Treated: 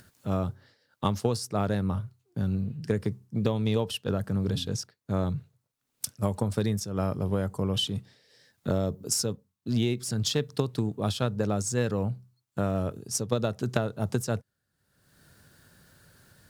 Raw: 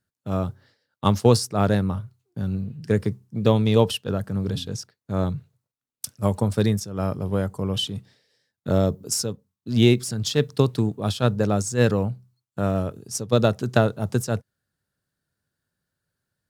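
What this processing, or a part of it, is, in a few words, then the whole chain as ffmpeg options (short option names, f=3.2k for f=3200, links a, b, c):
upward and downward compression: -af "acompressor=mode=upward:threshold=-38dB:ratio=2.5,acompressor=threshold=-23dB:ratio=6"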